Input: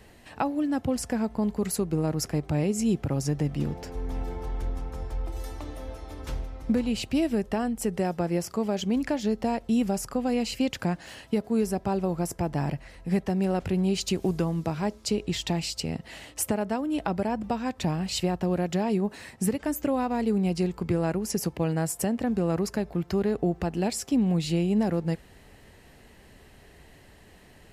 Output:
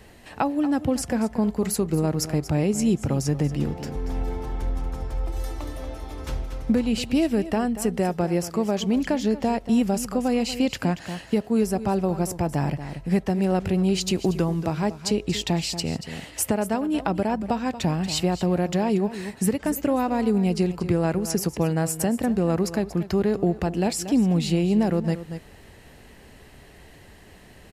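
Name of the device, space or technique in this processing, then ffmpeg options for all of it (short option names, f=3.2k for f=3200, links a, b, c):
ducked delay: -filter_complex "[0:a]asplit=3[a][b][c];[b]adelay=234,volume=-7dB[d];[c]apad=whole_len=1232818[e];[d][e]sidechaincompress=threshold=-31dB:ratio=4:attack=12:release=514[f];[a][f]amix=inputs=2:normalize=0,volume=3.5dB"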